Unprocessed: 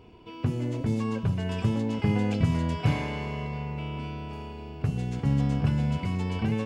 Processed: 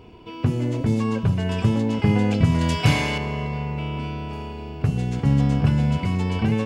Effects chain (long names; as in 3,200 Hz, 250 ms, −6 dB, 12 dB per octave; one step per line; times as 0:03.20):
0:02.61–0:03.18: high-shelf EQ 2,300 Hz +11.5 dB
level +6 dB